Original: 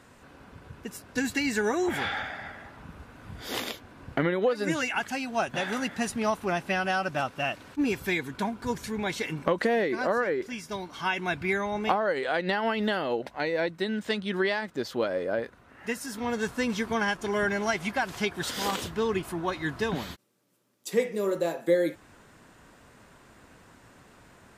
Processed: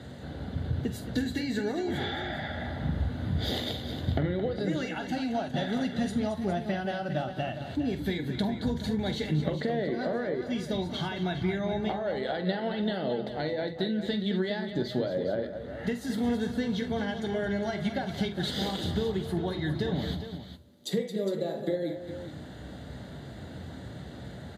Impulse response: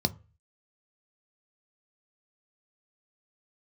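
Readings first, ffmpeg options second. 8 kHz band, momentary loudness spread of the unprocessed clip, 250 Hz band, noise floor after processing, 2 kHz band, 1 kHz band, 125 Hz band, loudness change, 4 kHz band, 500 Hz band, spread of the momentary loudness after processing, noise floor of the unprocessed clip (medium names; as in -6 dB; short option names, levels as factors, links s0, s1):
-9.0 dB, 10 LU, +2.0 dB, -43 dBFS, -8.0 dB, -6.0 dB, +7.0 dB, -2.0 dB, -0.5 dB, -3.0 dB, 11 LU, -56 dBFS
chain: -filter_complex "[0:a]acompressor=threshold=0.0112:ratio=6,aecho=1:1:46|71|221|409:0.266|0.1|0.299|0.282[s0];[1:a]atrim=start_sample=2205,asetrate=36162,aresample=44100[s1];[s0][s1]afir=irnorm=-1:irlink=0,volume=0.708"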